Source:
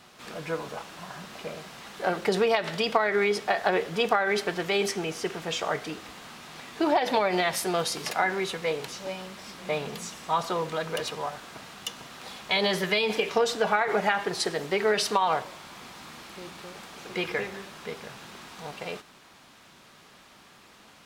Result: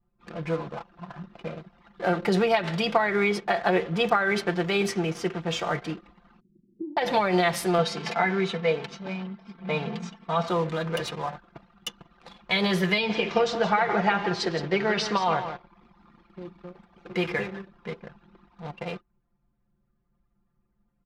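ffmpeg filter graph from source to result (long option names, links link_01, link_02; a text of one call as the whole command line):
ffmpeg -i in.wav -filter_complex "[0:a]asettb=1/sr,asplit=3[link_01][link_02][link_03];[link_01]atrim=end=6.404[link_04];[link_02]atrim=start=6.4:end=6.97,asetpts=PTS-STARTPTS,afade=type=in:duration=0.004:curve=qsin,afade=type=out:start_time=0.566:duration=0.004:curve=qsin,acompressor=threshold=-33dB:ratio=8:attack=3.2:release=140:knee=1:detection=peak,asuperpass=centerf=220:order=12:qfactor=0.73[link_05];[link_03]atrim=start=6.966[link_06];[link_04][link_05]acrossfade=duration=0.004:curve1=hsin:curve2=qsin[link_07];[link_07][link_06]acrossfade=duration=0.004:curve1=qsin:curve2=hsin,asettb=1/sr,asplit=3[link_08][link_09][link_10];[link_08]atrim=end=7.784[link_11];[link_09]atrim=start=7.78:end=10.48,asetpts=PTS-STARTPTS,afade=type=in:duration=0.004:curve=qsin,afade=type=out:start_time=2.696:duration=0.004:curve=qsin,highpass=100,lowpass=5000,aecho=1:1:4.5:0.61,atrim=end_sample=119070[link_12];[link_10]atrim=start=10.476[link_13];[link_11][link_12]acrossfade=duration=0.004:curve1=hsin:curve2=qsin[link_14];[link_14][link_13]acrossfade=duration=0.004:curve1=qsin:curve2=hsin,asettb=1/sr,asplit=3[link_15][link_16][link_17];[link_15]atrim=end=12.984[link_18];[link_16]atrim=start=12.98:end=15.69,asetpts=PTS-STARTPTS,afade=type=in:duration=0.004:curve=qsin,afade=type=out:start_time=2.706:duration=0.004:curve=qsin,lowpass=frequency=6200:width=0.5412,lowpass=frequency=6200:width=1.3066,aecho=1:1:169:0.316,atrim=end_sample=119511[link_19];[link_17]atrim=start=15.686[link_20];[link_18][link_19]acrossfade=duration=0.004:curve1=hsin:curve2=qsin[link_21];[link_21][link_20]acrossfade=duration=0.004:curve1=qsin:curve2=hsin,anlmdn=1,bass=frequency=250:gain=6,treble=frequency=4000:gain=-4,aecho=1:1:5.8:0.53" out.wav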